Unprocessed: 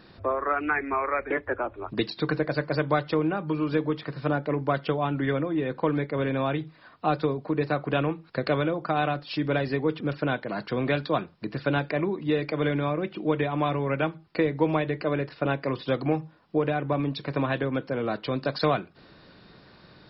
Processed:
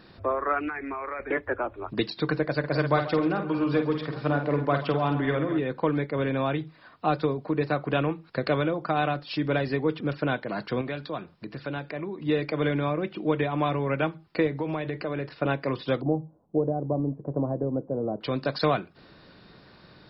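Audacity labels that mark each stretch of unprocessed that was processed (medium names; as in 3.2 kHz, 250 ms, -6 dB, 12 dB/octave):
0.680000	1.200000	compression, threshold -30 dBFS
2.590000	5.590000	multi-tap echo 49/133/141/211/264/824 ms -7/-17.5/-17.5/-17/-17/-17 dB
10.810000	12.220000	compression 1.5:1, threshold -42 dBFS
14.470000	15.280000	compression, threshold -25 dBFS
16.010000	18.210000	inverse Chebyshev low-pass stop band from 3.3 kHz, stop band 70 dB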